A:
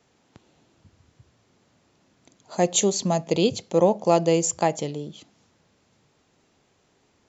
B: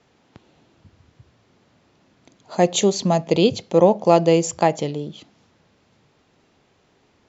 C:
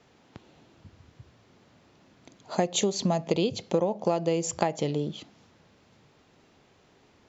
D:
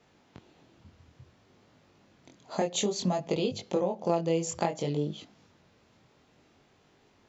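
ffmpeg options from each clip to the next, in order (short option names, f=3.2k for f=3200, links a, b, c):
-af "lowpass=5k,volume=4.5dB"
-af "acompressor=threshold=-21dB:ratio=16"
-af "flanger=delay=19.5:depth=5.1:speed=0.57"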